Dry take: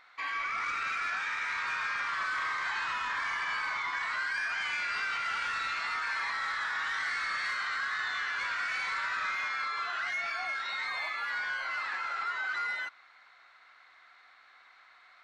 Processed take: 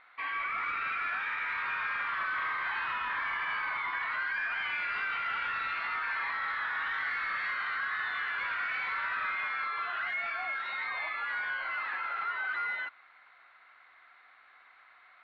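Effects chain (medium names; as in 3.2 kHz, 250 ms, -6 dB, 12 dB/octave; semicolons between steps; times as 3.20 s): low-pass 3.2 kHz 24 dB/octave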